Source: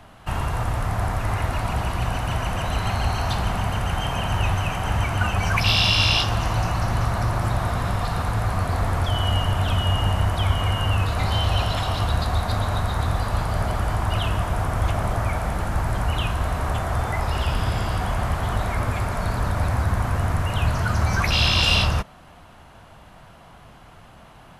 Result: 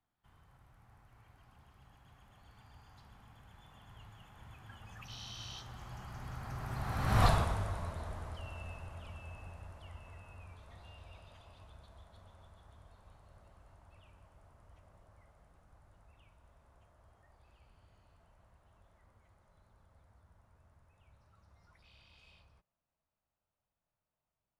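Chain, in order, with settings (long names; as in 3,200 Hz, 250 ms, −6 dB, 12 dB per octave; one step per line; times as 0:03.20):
source passing by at 0:07.25, 34 m/s, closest 2.7 metres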